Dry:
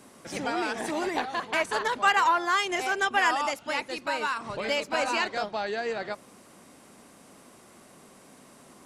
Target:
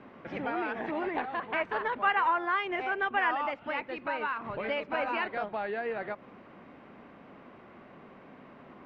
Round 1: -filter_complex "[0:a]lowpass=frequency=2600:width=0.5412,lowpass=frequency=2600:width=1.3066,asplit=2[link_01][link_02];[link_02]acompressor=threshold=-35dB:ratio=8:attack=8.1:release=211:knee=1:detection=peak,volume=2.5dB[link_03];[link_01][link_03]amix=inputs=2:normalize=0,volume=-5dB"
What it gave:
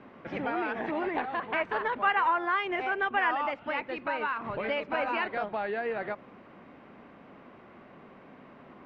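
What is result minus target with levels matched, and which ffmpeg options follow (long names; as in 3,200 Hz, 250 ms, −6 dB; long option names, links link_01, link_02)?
downward compressor: peak gain reduction −5.5 dB
-filter_complex "[0:a]lowpass=frequency=2600:width=0.5412,lowpass=frequency=2600:width=1.3066,asplit=2[link_01][link_02];[link_02]acompressor=threshold=-41.5dB:ratio=8:attack=8.1:release=211:knee=1:detection=peak,volume=2.5dB[link_03];[link_01][link_03]amix=inputs=2:normalize=0,volume=-5dB"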